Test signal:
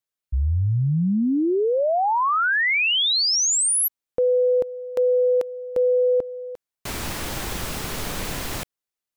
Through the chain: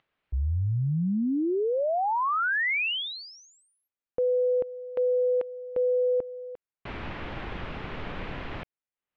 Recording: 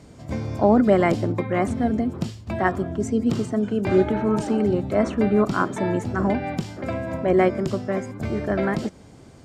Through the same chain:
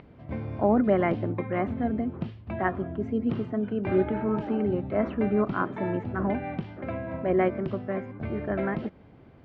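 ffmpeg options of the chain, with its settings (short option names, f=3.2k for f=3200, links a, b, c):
-af "acompressor=mode=upward:threshold=-48dB:ratio=2.5:release=423:knee=2.83:detection=peak,lowpass=f=2.9k:w=0.5412,lowpass=f=2.9k:w=1.3066,volume=-5.5dB"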